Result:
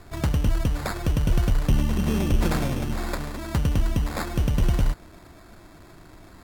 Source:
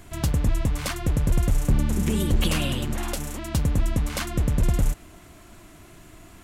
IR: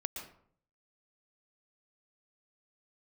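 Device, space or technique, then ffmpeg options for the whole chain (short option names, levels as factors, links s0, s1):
crushed at another speed: -af "asetrate=55125,aresample=44100,acrusher=samples=12:mix=1:aa=0.000001,asetrate=35280,aresample=44100"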